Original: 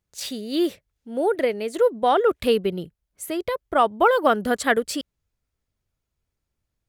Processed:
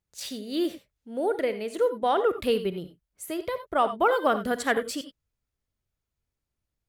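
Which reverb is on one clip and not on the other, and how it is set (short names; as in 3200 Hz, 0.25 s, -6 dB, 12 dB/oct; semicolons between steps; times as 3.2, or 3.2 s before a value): non-linear reverb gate 0.11 s rising, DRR 10.5 dB; gain -5 dB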